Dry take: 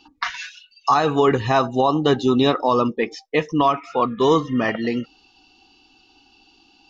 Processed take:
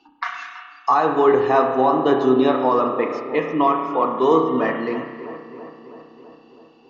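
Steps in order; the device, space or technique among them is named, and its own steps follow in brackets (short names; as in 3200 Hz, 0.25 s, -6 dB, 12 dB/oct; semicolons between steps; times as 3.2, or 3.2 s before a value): three-band isolator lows -14 dB, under 230 Hz, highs -12 dB, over 2100 Hz; dub delay into a spring reverb (darkening echo 0.328 s, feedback 67%, low-pass 2400 Hz, level -13 dB; spring tank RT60 1.5 s, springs 31 ms, chirp 50 ms, DRR 3.5 dB)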